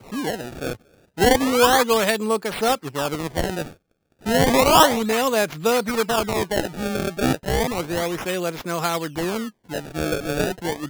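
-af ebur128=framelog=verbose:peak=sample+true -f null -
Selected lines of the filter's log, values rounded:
Integrated loudness:
  I:         -21.4 LUFS
  Threshold: -31.7 LUFS
Loudness range:
  LRA:         5.5 LU
  Threshold: -41.4 LUFS
  LRA low:   -25.1 LUFS
  LRA high:  -19.6 LUFS
Sample peak:
  Peak:       -4.5 dBFS
True peak:
  Peak:       -2.8 dBFS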